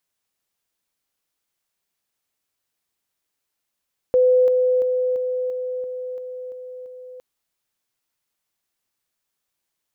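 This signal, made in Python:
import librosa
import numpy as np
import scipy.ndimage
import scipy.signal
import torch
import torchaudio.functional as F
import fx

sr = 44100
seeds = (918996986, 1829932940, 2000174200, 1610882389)

y = fx.level_ladder(sr, hz=505.0, from_db=-12.0, step_db=-3.0, steps=9, dwell_s=0.34, gap_s=0.0)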